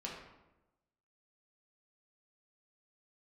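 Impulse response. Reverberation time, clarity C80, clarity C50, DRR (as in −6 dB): 1.0 s, 5.5 dB, 2.5 dB, −4.0 dB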